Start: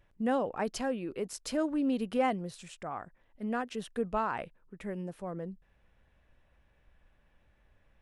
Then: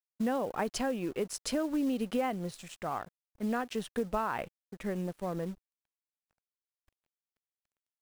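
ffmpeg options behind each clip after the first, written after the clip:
ffmpeg -i in.wav -af "acrusher=bits=6:mode=log:mix=0:aa=0.000001,aeval=exprs='sgn(val(0))*max(abs(val(0))-0.00158,0)':channel_layout=same,acompressor=threshold=-32dB:ratio=6,volume=4.5dB" out.wav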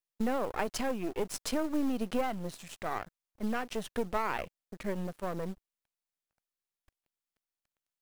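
ffmpeg -i in.wav -af "aeval=exprs='if(lt(val(0),0),0.251*val(0),val(0))':channel_layout=same,volume=3.5dB" out.wav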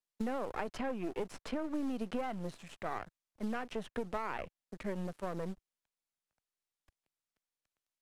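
ffmpeg -i in.wav -filter_complex "[0:a]lowpass=11000,acrossover=split=89|3000[link_01][link_02][link_03];[link_01]acompressor=threshold=-43dB:ratio=4[link_04];[link_02]acompressor=threshold=-32dB:ratio=4[link_05];[link_03]acompressor=threshold=-58dB:ratio=4[link_06];[link_04][link_05][link_06]amix=inputs=3:normalize=0,volume=-1.5dB" out.wav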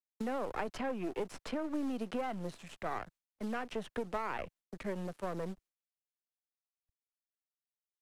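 ffmpeg -i in.wav -filter_complex "[0:a]agate=range=-33dB:threshold=-56dB:ratio=3:detection=peak,acrossover=split=220|790[link_01][link_02][link_03];[link_01]alimiter=level_in=15.5dB:limit=-24dB:level=0:latency=1:release=239,volume=-15.5dB[link_04];[link_04][link_02][link_03]amix=inputs=3:normalize=0,volume=1dB" out.wav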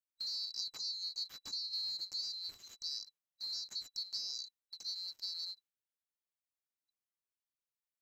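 ffmpeg -i in.wav -af "afftfilt=real='real(if(lt(b,736),b+184*(1-2*mod(floor(b/184),2)),b),0)':imag='imag(if(lt(b,736),b+184*(1-2*mod(floor(b/184),2)),b),0)':win_size=2048:overlap=0.75,volume=-4.5dB" out.wav

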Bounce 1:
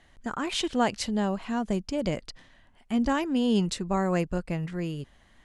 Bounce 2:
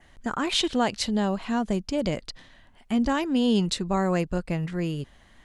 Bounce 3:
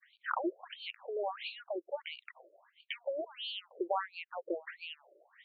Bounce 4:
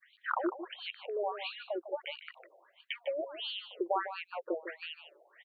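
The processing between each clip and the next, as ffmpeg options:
ffmpeg -i in.wav -filter_complex "[0:a]asplit=2[link_01][link_02];[link_02]alimiter=limit=-20.5dB:level=0:latency=1:release=427,volume=2.5dB[link_03];[link_01][link_03]amix=inputs=2:normalize=0,adynamicequalizer=threshold=0.00708:dfrequency=3900:dqfactor=2.8:tfrequency=3900:tqfactor=2.8:attack=5:release=100:ratio=0.375:range=2.5:mode=boostabove:tftype=bell,volume=-3.5dB" out.wav
ffmpeg -i in.wav -af "agate=range=-33dB:threshold=-48dB:ratio=3:detection=peak,acompressor=threshold=-30dB:ratio=6,afftfilt=real='re*between(b*sr/1024,440*pow(3300/440,0.5+0.5*sin(2*PI*1.5*pts/sr))/1.41,440*pow(3300/440,0.5+0.5*sin(2*PI*1.5*pts/sr))*1.41)':imag='im*between(b*sr/1024,440*pow(3300/440,0.5+0.5*sin(2*PI*1.5*pts/sr))/1.41,440*pow(3300/440,0.5+0.5*sin(2*PI*1.5*pts/sr))*1.41)':win_size=1024:overlap=0.75,volume=6dB" out.wav
ffmpeg -i in.wav -af "aecho=1:1:152:0.282,volume=1.5dB" out.wav

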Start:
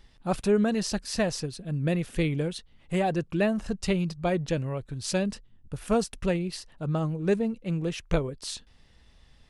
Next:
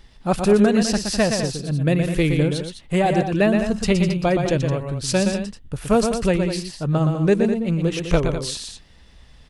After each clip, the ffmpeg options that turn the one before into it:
ffmpeg -i in.wav -af "aecho=1:1:119.5|204.1:0.501|0.316,volume=7dB" out.wav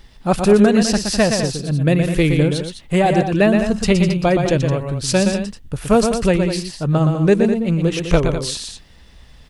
ffmpeg -i in.wav -af "acrusher=bits=11:mix=0:aa=0.000001,volume=3.5dB" out.wav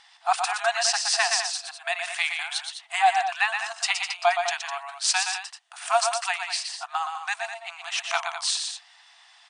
ffmpeg -i in.wav -af "afftfilt=real='re*between(b*sr/4096,670,9700)':imag='im*between(b*sr/4096,670,9700)':win_size=4096:overlap=0.75" out.wav

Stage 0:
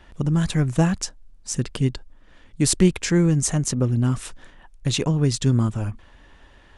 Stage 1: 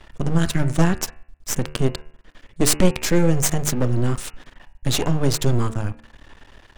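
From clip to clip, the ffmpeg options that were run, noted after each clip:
ffmpeg -i in.wav -af "aeval=exprs='max(val(0),0)':channel_layout=same,bandreject=frequency=74.53:width_type=h:width=4,bandreject=frequency=149.06:width_type=h:width=4,bandreject=frequency=223.59:width_type=h:width=4,bandreject=frequency=298.12:width_type=h:width=4,bandreject=frequency=372.65:width_type=h:width=4,bandreject=frequency=447.18:width_type=h:width=4,bandreject=frequency=521.71:width_type=h:width=4,bandreject=frequency=596.24:width_type=h:width=4,bandreject=frequency=670.77:width_type=h:width=4,bandreject=frequency=745.3:width_type=h:width=4,bandreject=frequency=819.83:width_type=h:width=4,bandreject=frequency=894.36:width_type=h:width=4,bandreject=frequency=968.89:width_type=h:width=4,bandreject=frequency=1043.42:width_type=h:width=4,bandreject=frequency=1117.95:width_type=h:width=4,bandreject=frequency=1192.48:width_type=h:width=4,bandreject=frequency=1267.01:width_type=h:width=4,bandreject=frequency=1341.54:width_type=h:width=4,bandreject=frequency=1416.07:width_type=h:width=4,bandreject=frequency=1490.6:width_type=h:width=4,bandreject=frequency=1565.13:width_type=h:width=4,bandreject=frequency=1639.66:width_type=h:width=4,bandreject=frequency=1714.19:width_type=h:width=4,bandreject=frequency=1788.72:width_type=h:width=4,bandreject=frequency=1863.25:width_type=h:width=4,bandreject=frequency=1937.78:width_type=h:width=4,bandreject=frequency=2012.31:width_type=h:width=4,bandreject=frequency=2086.84:width_type=h:width=4,bandreject=frequency=2161.37:width_type=h:width=4,bandreject=frequency=2235.9:width_type=h:width=4,bandreject=frequency=2310.43:width_type=h:width=4,bandreject=frequency=2384.96:width_type=h:width=4,bandreject=frequency=2459.49:width_type=h:width=4,bandreject=frequency=2534.02:width_type=h:width=4,bandreject=frequency=2608.55:width_type=h:width=4,bandreject=frequency=2683.08:width_type=h:width=4,bandreject=frequency=2757.61:width_type=h:width=4,bandreject=frequency=2832.14:width_type=h:width=4,bandreject=frequency=2906.67:width_type=h:width=4,volume=7dB" out.wav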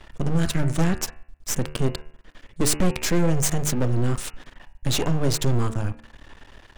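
ffmpeg -i in.wav -af "asoftclip=type=tanh:threshold=-11.5dB" out.wav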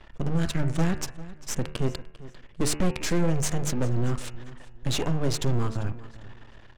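ffmpeg -i in.wav -af "aecho=1:1:397|794|1191:0.133|0.0387|0.0112,adynamicsmooth=sensitivity=6.5:basefreq=5800,volume=-3.5dB" out.wav

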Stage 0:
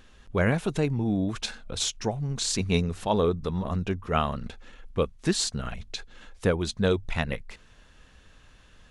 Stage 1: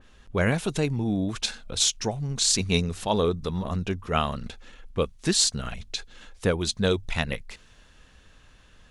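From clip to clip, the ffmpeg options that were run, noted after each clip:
ffmpeg -i in.wav -af "adynamicequalizer=threshold=0.00708:dfrequency=2600:dqfactor=0.7:tfrequency=2600:tqfactor=0.7:attack=5:release=100:ratio=0.375:range=3.5:mode=boostabove:tftype=highshelf" out.wav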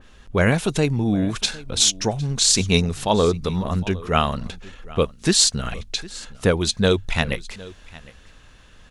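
ffmpeg -i in.wav -af "aecho=1:1:758:0.0944,volume=5.5dB" out.wav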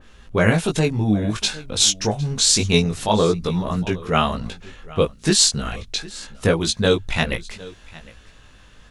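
ffmpeg -i in.wav -af "flanger=delay=17.5:depth=2.2:speed=0.27,volume=4dB" out.wav

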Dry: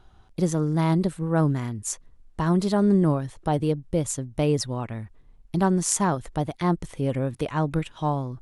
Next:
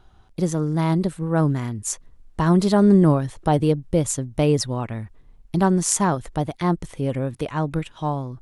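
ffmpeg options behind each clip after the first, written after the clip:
ffmpeg -i in.wav -af "dynaudnorm=framelen=200:gausssize=21:maxgain=5dB,volume=1dB" out.wav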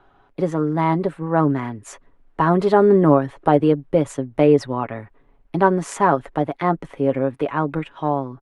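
ffmpeg -i in.wav -filter_complex "[0:a]acrossover=split=240 2600:gain=0.178 1 0.0891[link_01][link_02][link_03];[link_01][link_02][link_03]amix=inputs=3:normalize=0,aecho=1:1:7.2:0.44,volume=5.5dB" out.wav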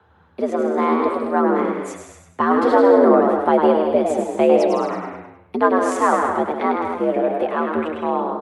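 ffmpeg -i in.wav -filter_complex "[0:a]asplit=2[link_01][link_02];[link_02]aecho=0:1:160.3|224.5:0.398|0.316[link_03];[link_01][link_03]amix=inputs=2:normalize=0,afreqshift=71,asplit=2[link_04][link_05];[link_05]asplit=5[link_06][link_07][link_08][link_09][link_10];[link_06]adelay=102,afreqshift=86,volume=-5.5dB[link_11];[link_07]adelay=204,afreqshift=172,volume=-13.7dB[link_12];[link_08]adelay=306,afreqshift=258,volume=-21.9dB[link_13];[link_09]adelay=408,afreqshift=344,volume=-30dB[link_14];[link_10]adelay=510,afreqshift=430,volume=-38.2dB[link_15];[link_11][link_12][link_13][link_14][link_15]amix=inputs=5:normalize=0[link_16];[link_04][link_16]amix=inputs=2:normalize=0,volume=-1dB" out.wav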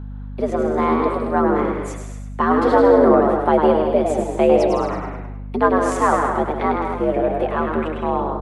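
ffmpeg -i in.wav -af "aeval=exprs='val(0)+0.0316*(sin(2*PI*50*n/s)+sin(2*PI*2*50*n/s)/2+sin(2*PI*3*50*n/s)/3+sin(2*PI*4*50*n/s)/4+sin(2*PI*5*50*n/s)/5)':channel_layout=same" out.wav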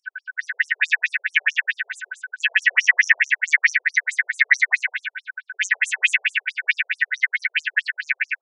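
ffmpeg -i in.wav -af "afftfilt=real='real(if(lt(b,272),68*(eq(floor(b/68),0)*3+eq(floor(b/68),1)*0+eq(floor(b/68),2)*1+eq(floor(b/68),3)*2)+mod(b,68),b),0)':imag='imag(if(lt(b,272),68*(eq(floor(b/68),0)*3+eq(floor(b/68),1)*0+eq(floor(b/68),2)*1+eq(floor(b/68),3)*2)+mod(b,68),b),0)':win_size=2048:overlap=0.75,aeval=exprs='0.891*sin(PI/2*1.41*val(0)/0.891)':channel_layout=same,afftfilt=real='re*between(b*sr/1024,510*pow(8000/510,0.5+0.5*sin(2*PI*4.6*pts/sr))/1.41,510*pow(8000/510,0.5+0.5*sin(2*PI*4.6*pts/sr))*1.41)':imag='im*between(b*sr/1024,510*pow(8000/510,0.5+0.5*sin(2*PI*4.6*pts/sr))/1.41,510*pow(8000/510,0.5+0.5*sin(2*PI*4.6*pts/sr))*1.41)':win_size=1024:overlap=0.75,volume=-1.5dB" out.wav

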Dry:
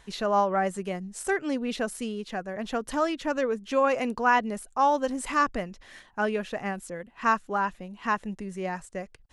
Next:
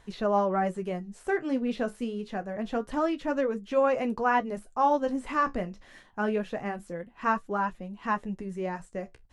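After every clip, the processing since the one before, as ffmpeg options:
ffmpeg -i in.wav -filter_complex "[0:a]flanger=delay=8.7:depth=8.4:regen=-49:speed=0.26:shape=triangular,tiltshelf=frequency=1100:gain=3.5,acrossover=split=4000[link_01][link_02];[link_02]acompressor=threshold=-55dB:ratio=4:attack=1:release=60[link_03];[link_01][link_03]amix=inputs=2:normalize=0,volume=1.5dB" out.wav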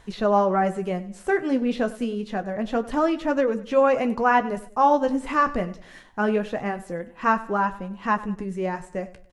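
ffmpeg -i in.wav -af "aecho=1:1:97|194|291:0.133|0.0533|0.0213,volume=5.5dB" out.wav

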